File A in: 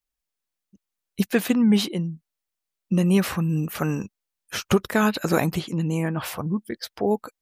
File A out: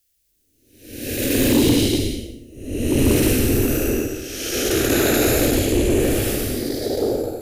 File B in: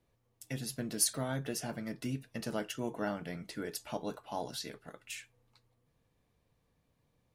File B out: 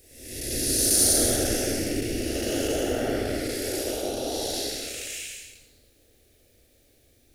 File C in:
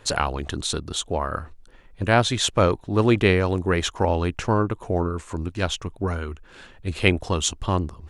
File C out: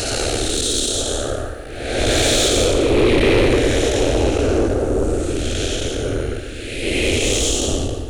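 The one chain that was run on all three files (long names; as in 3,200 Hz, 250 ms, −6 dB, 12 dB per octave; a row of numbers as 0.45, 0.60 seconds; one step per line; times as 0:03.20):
spectrum smeared in time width 466 ms
random phases in short frames
high-shelf EQ 4,900 Hz +9.5 dB
phaser with its sweep stopped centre 420 Hz, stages 4
soft clipping −23.5 dBFS
normalise the peak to −9 dBFS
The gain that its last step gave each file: +14.5, +18.5, +14.5 decibels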